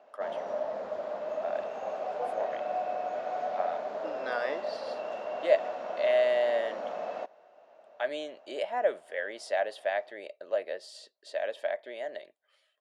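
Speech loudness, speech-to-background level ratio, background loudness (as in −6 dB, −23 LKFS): −32.5 LKFS, 3.0 dB, −35.5 LKFS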